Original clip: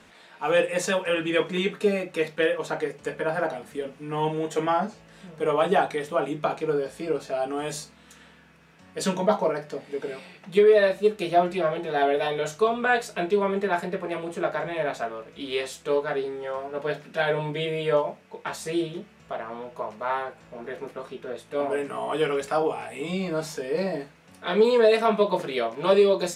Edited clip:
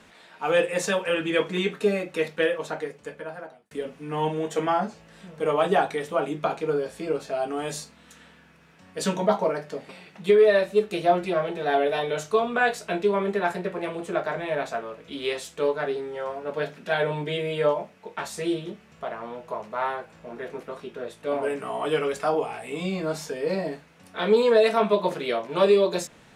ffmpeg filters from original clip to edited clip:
ffmpeg -i in.wav -filter_complex "[0:a]asplit=3[link_01][link_02][link_03];[link_01]atrim=end=3.71,asetpts=PTS-STARTPTS,afade=type=out:start_time=2.42:duration=1.29[link_04];[link_02]atrim=start=3.71:end=9.892,asetpts=PTS-STARTPTS,afade=type=in:duration=0.004:curve=hsin[link_05];[link_03]atrim=start=10.168[link_06];[link_04][link_05]concat=n=2:v=0:a=1[link_07];[link_07][link_06]acrossfade=duration=0.004:curve1=hsin:curve2=hsin" out.wav

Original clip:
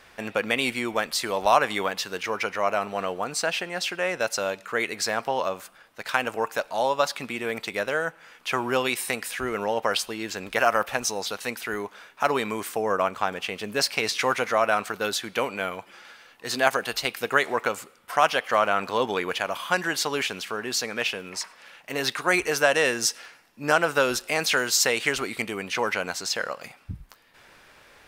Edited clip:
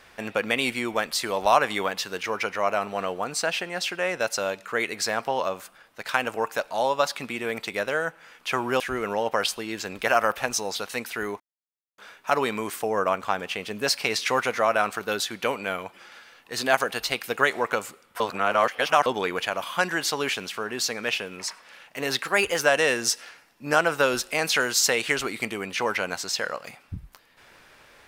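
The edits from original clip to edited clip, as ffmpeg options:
ffmpeg -i in.wav -filter_complex "[0:a]asplit=7[link_01][link_02][link_03][link_04][link_05][link_06][link_07];[link_01]atrim=end=8.802[link_08];[link_02]atrim=start=9.308:end=11.91,asetpts=PTS-STARTPTS,afade=type=out:start_time=2.598:duration=0.004:curve=hsin,apad=pad_dur=0.58[link_09];[link_03]atrim=start=11.91:end=18.132,asetpts=PTS-STARTPTS,afade=type=in:duration=0.004:curve=hsin[link_10];[link_04]atrim=start=18.128:end=18.992,asetpts=PTS-STARTPTS,areverse[link_11];[link_05]atrim=start=18.988:end=22.164[link_12];[link_06]atrim=start=22.16:end=22.56,asetpts=PTS-STARTPTS,asetrate=48951,aresample=44100[link_13];[link_07]atrim=start=22.556[link_14];[link_09][link_10]concat=n=2:v=0:a=1[link_15];[link_08][link_15]acrossfade=duration=0.004:curve1=hsin:curve2=hsin[link_16];[link_16][link_11]acrossfade=duration=0.004:curve1=hsin:curve2=hsin[link_17];[link_17][link_12]acrossfade=duration=0.004:curve1=hsin:curve2=hsin[link_18];[link_18][link_13]acrossfade=duration=0.004:curve1=hsin:curve2=hsin[link_19];[link_19][link_14]acrossfade=duration=0.004:curve1=hsin:curve2=hsin" out.wav

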